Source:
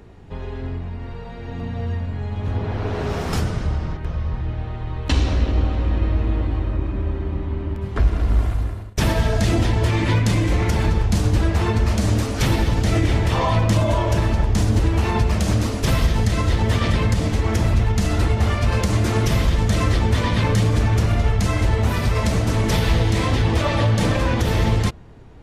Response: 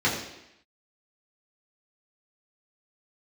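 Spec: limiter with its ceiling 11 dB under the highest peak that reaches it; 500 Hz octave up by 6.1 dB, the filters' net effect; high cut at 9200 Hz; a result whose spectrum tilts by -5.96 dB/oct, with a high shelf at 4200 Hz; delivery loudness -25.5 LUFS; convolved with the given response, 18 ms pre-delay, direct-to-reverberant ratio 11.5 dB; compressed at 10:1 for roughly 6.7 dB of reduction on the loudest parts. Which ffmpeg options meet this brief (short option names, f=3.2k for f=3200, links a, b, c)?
-filter_complex "[0:a]lowpass=9.2k,equalizer=f=500:t=o:g=7.5,highshelf=f=4.2k:g=8,acompressor=threshold=-19dB:ratio=10,alimiter=limit=-20dB:level=0:latency=1,asplit=2[a][b];[1:a]atrim=start_sample=2205,adelay=18[c];[b][c]afir=irnorm=-1:irlink=0,volume=-26dB[d];[a][d]amix=inputs=2:normalize=0,volume=3dB"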